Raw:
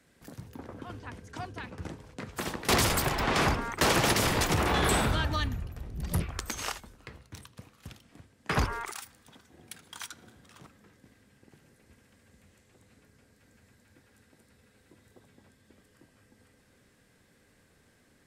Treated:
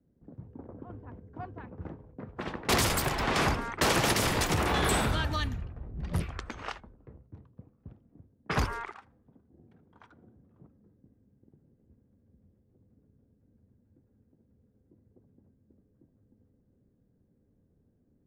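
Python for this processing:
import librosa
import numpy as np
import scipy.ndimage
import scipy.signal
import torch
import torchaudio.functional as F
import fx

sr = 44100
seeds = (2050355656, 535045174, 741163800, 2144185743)

y = fx.env_lowpass(x, sr, base_hz=310.0, full_db=-25.5)
y = F.gain(torch.from_numpy(y), -1.0).numpy()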